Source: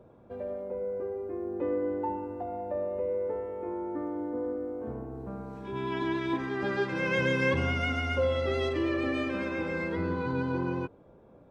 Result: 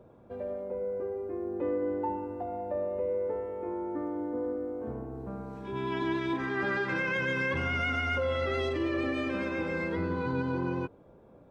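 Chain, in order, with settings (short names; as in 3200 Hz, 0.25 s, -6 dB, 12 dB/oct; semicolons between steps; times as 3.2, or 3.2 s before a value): 6.36–8.61 dynamic EQ 1600 Hz, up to +7 dB, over -44 dBFS, Q 1.1; limiter -22 dBFS, peak gain reduction 9 dB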